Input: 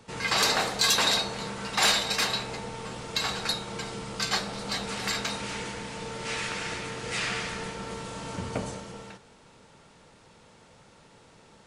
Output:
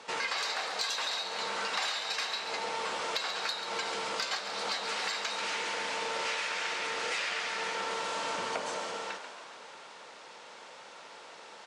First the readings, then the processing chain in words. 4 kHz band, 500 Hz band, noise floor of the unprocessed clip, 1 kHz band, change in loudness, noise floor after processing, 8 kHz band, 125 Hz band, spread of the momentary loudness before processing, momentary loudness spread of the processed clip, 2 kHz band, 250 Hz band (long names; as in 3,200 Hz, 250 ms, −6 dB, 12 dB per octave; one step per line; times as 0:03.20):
−5.5 dB, −3.0 dB, −56 dBFS, −1.5 dB, −4.5 dB, −50 dBFS, −8.0 dB, −20.5 dB, 15 LU, 17 LU, −2.5 dB, −12.5 dB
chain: band-pass filter 570–6,300 Hz
downward compressor 16 to 1, threshold −39 dBFS, peak gain reduction 20 dB
soft clipping −27.5 dBFS, distortion −29 dB
on a send: echo with shifted repeats 138 ms, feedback 62%, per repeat +67 Hz, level −9.5 dB
on the sum: level +8.5 dB